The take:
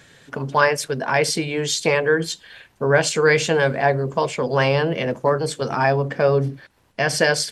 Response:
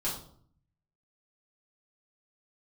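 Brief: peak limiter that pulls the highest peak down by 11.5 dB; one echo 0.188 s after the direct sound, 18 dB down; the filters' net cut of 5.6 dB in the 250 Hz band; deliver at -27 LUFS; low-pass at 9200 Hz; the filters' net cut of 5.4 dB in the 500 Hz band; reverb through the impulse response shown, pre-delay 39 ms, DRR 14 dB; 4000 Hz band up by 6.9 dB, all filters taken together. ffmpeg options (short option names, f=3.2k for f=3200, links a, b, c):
-filter_complex "[0:a]lowpass=9.2k,equalizer=f=250:t=o:g=-8,equalizer=f=500:t=o:g=-4.5,equalizer=f=4k:t=o:g=9,alimiter=limit=-14.5dB:level=0:latency=1,aecho=1:1:188:0.126,asplit=2[a][b];[1:a]atrim=start_sample=2205,adelay=39[c];[b][c]afir=irnorm=-1:irlink=0,volume=-19dB[d];[a][d]amix=inputs=2:normalize=0,volume=-2dB"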